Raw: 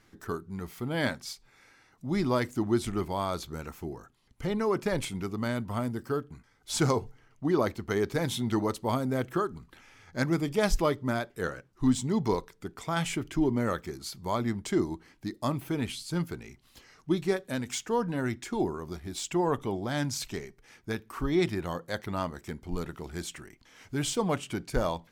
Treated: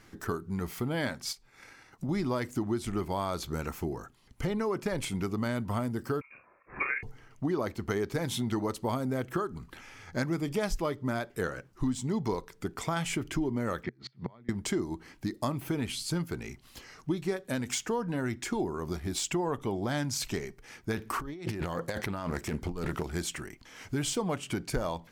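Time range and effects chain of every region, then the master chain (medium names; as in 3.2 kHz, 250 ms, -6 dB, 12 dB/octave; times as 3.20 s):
1.31–2.09 s: transient shaper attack +11 dB, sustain -7 dB + compression 3:1, threshold -40 dBFS
6.21–7.03 s: high-pass 760 Hz 6 dB/octave + frequency inversion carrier 2.6 kHz + doubling 30 ms -7 dB
13.83–14.49 s: inverted gate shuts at -27 dBFS, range -34 dB + cabinet simulation 110–4000 Hz, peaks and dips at 130 Hz +10 dB, 230 Hz +5 dB, 440 Hz +4 dB, 1.9 kHz +9 dB
20.97–23.03 s: compressor with a negative ratio -39 dBFS + loudspeaker Doppler distortion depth 0.28 ms
whole clip: peaking EQ 3.7 kHz -2.5 dB 0.27 oct; compression 4:1, threshold -35 dBFS; trim +6 dB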